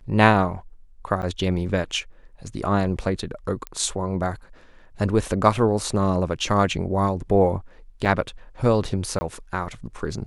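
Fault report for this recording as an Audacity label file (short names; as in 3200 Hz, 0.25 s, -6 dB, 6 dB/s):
1.220000	1.230000	gap 8 ms
3.670000	3.670000	pop -16 dBFS
8.050000	8.060000	gap 5.7 ms
9.190000	9.210000	gap 20 ms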